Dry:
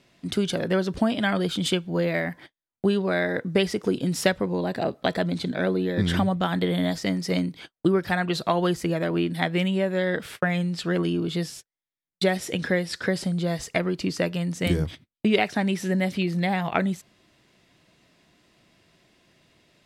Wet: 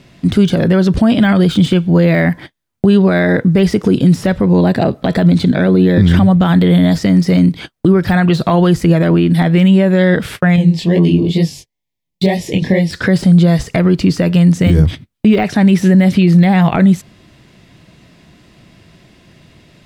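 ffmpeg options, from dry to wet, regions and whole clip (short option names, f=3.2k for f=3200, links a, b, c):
-filter_complex "[0:a]asettb=1/sr,asplit=3[a][b][c];[a]atrim=end=10.564[d];[b]atrim=start=10.56:end=12.91,asetpts=PTS-STARTPTS,afade=t=in:d=0.004:c=qsin,afade=t=out:st=2.346:d=0.004:c=qsin,equalizer=f=9.1k:w=3.4:g=-6,flanger=delay=18:depth=7.9:speed=2.2,asuperstop=centerf=1400:order=4:qfactor=1.6[e];[c]atrim=start=12.906[f];[d][e]acrossfade=d=0.004:c1=hsin:c2=qsin[g];[g][f]acrossfade=d=0.004:c1=qsin:c2=hsin,deesser=0.85,bass=f=250:g=9,treble=f=4k:g=-2,alimiter=level_in=14dB:limit=-1dB:release=50:level=0:latency=1,volume=-1dB"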